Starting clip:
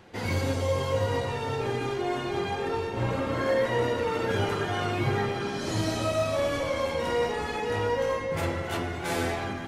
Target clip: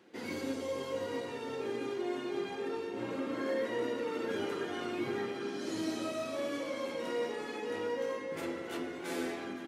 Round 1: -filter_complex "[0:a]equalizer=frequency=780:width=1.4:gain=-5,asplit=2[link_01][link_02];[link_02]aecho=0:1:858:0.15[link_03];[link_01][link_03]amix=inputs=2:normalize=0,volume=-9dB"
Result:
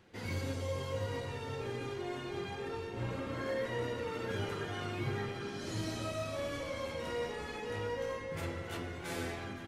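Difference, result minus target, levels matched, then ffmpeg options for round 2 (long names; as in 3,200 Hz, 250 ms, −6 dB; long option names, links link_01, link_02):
250 Hz band −3.0 dB
-filter_complex "[0:a]highpass=frequency=280:width_type=q:width=2.1,equalizer=frequency=780:width=1.4:gain=-5,asplit=2[link_01][link_02];[link_02]aecho=0:1:858:0.15[link_03];[link_01][link_03]amix=inputs=2:normalize=0,volume=-9dB"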